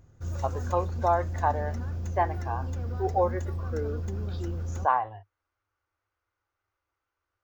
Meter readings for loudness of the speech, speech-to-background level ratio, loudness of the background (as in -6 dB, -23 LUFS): -30.5 LUFS, 3.5 dB, -34.0 LUFS